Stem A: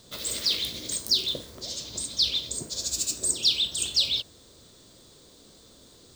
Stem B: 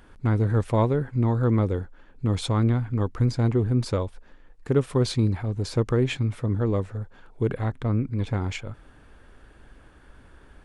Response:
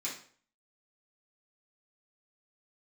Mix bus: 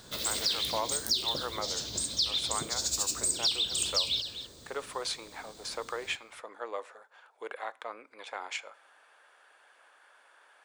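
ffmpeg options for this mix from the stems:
-filter_complex "[0:a]volume=1dB,asplit=2[a][b];[b]volume=-15.5dB[c];[1:a]highpass=f=630:w=0.5412,highpass=f=630:w=1.3066,volume=-1.5dB,asplit=2[d][e];[e]volume=-19.5dB[f];[2:a]atrim=start_sample=2205[g];[f][g]afir=irnorm=-1:irlink=0[h];[c]aecho=0:1:249:1[i];[a][d][h][i]amix=inputs=4:normalize=0,acompressor=threshold=-28dB:ratio=2.5"

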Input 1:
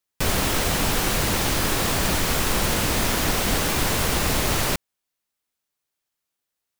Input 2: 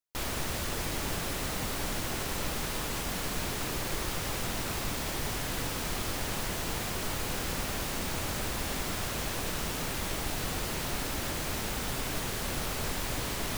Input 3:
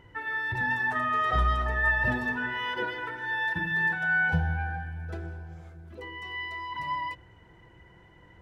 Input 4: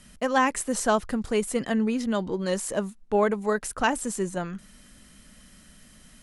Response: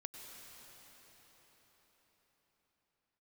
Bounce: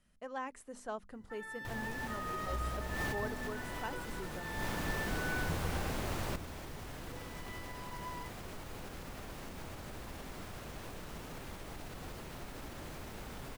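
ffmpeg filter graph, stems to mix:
-filter_complex "[0:a]adelay=1600,volume=-13.5dB[a];[1:a]alimiter=level_in=6.5dB:limit=-24dB:level=0:latency=1:release=163,volume=-6.5dB,acrusher=bits=7:mix=0:aa=0.000001,adelay=1500,volume=-3.5dB[b];[2:a]aexciter=amount=6.4:drive=7.8:freq=4.4k,adelay=1150,volume=-12.5dB[c];[3:a]equalizer=f=220:w=1.5:g=-4.5,bandreject=f=50:t=h:w=6,bandreject=f=100:t=h:w=6,bandreject=f=150:t=h:w=6,bandreject=f=200:t=h:w=6,bandreject=f=250:t=h:w=6,volume=-17dB,asplit=2[d][e];[e]apad=whole_len=370303[f];[a][f]sidechaincompress=threshold=-59dB:ratio=8:attack=27:release=150[g];[g][b][c][d]amix=inputs=4:normalize=0,highshelf=f=2.5k:g=-9.5"

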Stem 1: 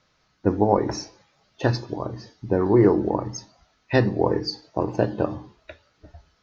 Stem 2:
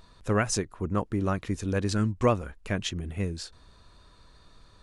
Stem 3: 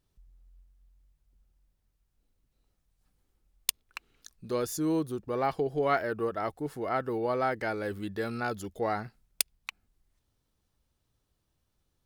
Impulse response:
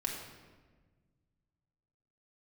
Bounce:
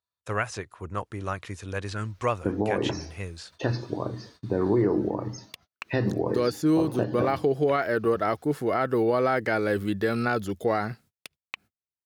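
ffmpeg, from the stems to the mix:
-filter_complex "[0:a]adelay=2000,volume=-0.5dB[a];[1:a]equalizer=f=220:t=o:w=2:g=-13.5,volume=2dB[b];[2:a]dynaudnorm=f=130:g=3:m=11.5dB,adelay=1850,volume=-2.5dB[c];[a][c]amix=inputs=2:normalize=0,equalizer=f=860:w=3.2:g=-4,alimiter=limit=-14.5dB:level=0:latency=1:release=124,volume=0dB[d];[b][d]amix=inputs=2:normalize=0,highpass=f=82:w=0.5412,highpass=f=82:w=1.3066,acrossover=split=3500[e][f];[f]acompressor=threshold=-43dB:ratio=4:attack=1:release=60[g];[e][g]amix=inputs=2:normalize=0,agate=range=-36dB:threshold=-52dB:ratio=16:detection=peak"

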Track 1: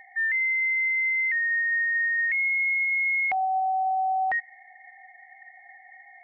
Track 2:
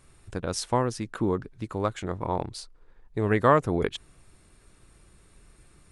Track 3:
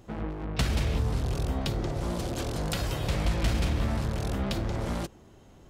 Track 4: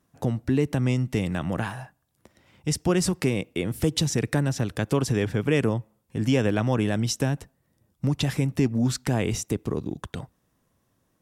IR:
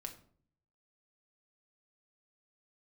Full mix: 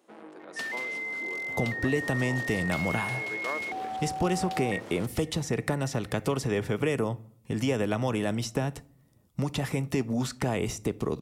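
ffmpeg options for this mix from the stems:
-filter_complex "[0:a]adelay=400,volume=-10dB[a];[1:a]highpass=f=320:w=0.5412,highpass=f=320:w=1.3066,volume=-15.5dB[b];[2:a]highpass=f=270:w=0.5412,highpass=f=270:w=1.3066,volume=-8.5dB[c];[3:a]bandreject=f=1.6k:w=9.5,acrossover=split=440|2000|7000[d][e][f][g];[d]acompressor=threshold=-32dB:ratio=4[h];[e]acompressor=threshold=-31dB:ratio=4[i];[f]acompressor=threshold=-44dB:ratio=4[j];[g]acompressor=threshold=-48dB:ratio=4[k];[h][i][j][k]amix=inputs=4:normalize=0,adelay=1350,volume=0.5dB,asplit=2[l][m];[m]volume=-6dB[n];[4:a]atrim=start_sample=2205[o];[n][o]afir=irnorm=-1:irlink=0[p];[a][b][c][l][p]amix=inputs=5:normalize=0"

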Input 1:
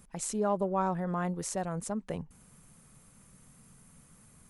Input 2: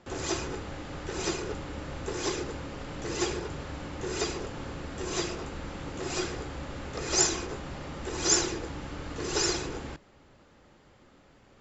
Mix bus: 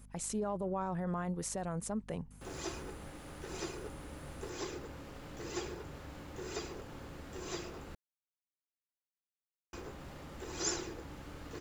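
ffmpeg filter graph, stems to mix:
-filter_complex "[0:a]alimiter=level_in=2dB:limit=-24dB:level=0:latency=1:release=13,volume=-2dB,aeval=exprs='val(0)+0.00224*(sin(2*PI*50*n/s)+sin(2*PI*2*50*n/s)/2+sin(2*PI*3*50*n/s)/3+sin(2*PI*4*50*n/s)/4+sin(2*PI*5*50*n/s)/5)':c=same,volume=-2dB[a];[1:a]acrusher=bits=7:mix=0:aa=0.5,adynamicequalizer=threshold=0.00562:dfrequency=2200:dqfactor=0.7:tfrequency=2200:tqfactor=0.7:attack=5:release=100:ratio=0.375:range=2:mode=cutabove:tftype=highshelf,adelay=2350,volume=-9.5dB,asplit=3[b][c][d];[b]atrim=end=7.95,asetpts=PTS-STARTPTS,afade=t=out:st=7.946:d=0.004:c=hsin[e];[c]atrim=start=7.95:end=9.73,asetpts=PTS-STARTPTS,volume=0[f];[d]atrim=start=9.73,asetpts=PTS-STARTPTS,afade=t=in:d=0.004:c=hsin[g];[e][f][g]concat=n=3:v=0:a=1[h];[a][h]amix=inputs=2:normalize=0"

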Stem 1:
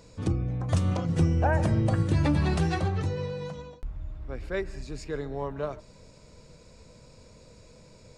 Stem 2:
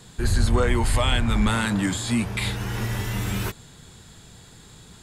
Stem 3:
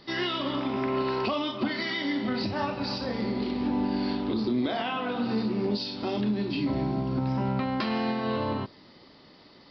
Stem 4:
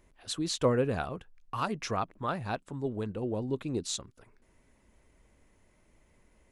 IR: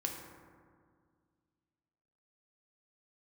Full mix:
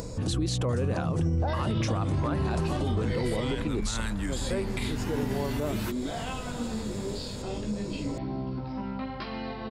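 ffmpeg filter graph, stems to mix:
-filter_complex "[0:a]equalizer=f=2.5k:w=0.74:g=-11.5,volume=2.5dB[a];[1:a]acompressor=threshold=-22dB:ratio=6,adelay=2400,volume=-8dB[b];[2:a]flanger=delay=15:depth=4.7:speed=1,aeval=exprs='val(0)+0.00891*(sin(2*PI*50*n/s)+sin(2*PI*2*50*n/s)/2+sin(2*PI*3*50*n/s)/3+sin(2*PI*4*50*n/s)/4+sin(2*PI*5*50*n/s)/5)':c=same,adelay=1400,volume=-9dB,asplit=3[c][d][e];[c]atrim=end=3.68,asetpts=PTS-STARTPTS,afade=t=out:st=3.676:d=0.004:c=hsin[f];[d]atrim=start=3.68:end=4.36,asetpts=PTS-STARTPTS,volume=0[g];[e]atrim=start=4.36,asetpts=PTS-STARTPTS,afade=t=in:d=0.004:c=hsin[h];[f][g][h]concat=n=3:v=0:a=1[i];[3:a]volume=0.5dB[j];[a][b]amix=inputs=2:normalize=0,acompressor=mode=upward:threshold=-26dB:ratio=2.5,alimiter=limit=-20dB:level=0:latency=1:release=21,volume=0dB[k];[i][j]amix=inputs=2:normalize=0,acontrast=32,alimiter=limit=-20dB:level=0:latency=1:release=89,volume=0dB[l];[k][l]amix=inputs=2:normalize=0,alimiter=limit=-20dB:level=0:latency=1:release=45"

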